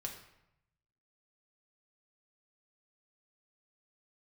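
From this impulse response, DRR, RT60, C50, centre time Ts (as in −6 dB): 0.5 dB, 0.85 s, 7.5 dB, 24 ms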